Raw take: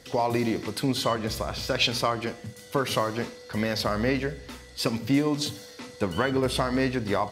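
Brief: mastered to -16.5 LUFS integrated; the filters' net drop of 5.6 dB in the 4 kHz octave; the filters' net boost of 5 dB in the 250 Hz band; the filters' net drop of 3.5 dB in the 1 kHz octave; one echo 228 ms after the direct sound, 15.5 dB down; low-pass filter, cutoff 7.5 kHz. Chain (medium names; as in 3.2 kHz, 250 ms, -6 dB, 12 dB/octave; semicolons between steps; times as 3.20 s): low-pass 7.5 kHz; peaking EQ 250 Hz +6 dB; peaking EQ 1 kHz -4.5 dB; peaking EQ 4 kHz -6.5 dB; delay 228 ms -15.5 dB; trim +9 dB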